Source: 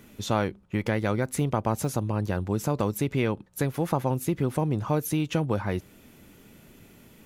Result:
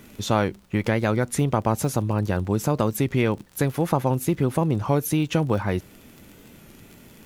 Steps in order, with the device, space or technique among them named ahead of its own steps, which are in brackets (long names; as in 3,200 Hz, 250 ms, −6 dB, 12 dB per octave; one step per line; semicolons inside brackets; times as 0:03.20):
warped LP (wow of a warped record 33 1/3 rpm, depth 100 cents; surface crackle 35 per second −38 dBFS; pink noise bed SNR 39 dB)
level +4 dB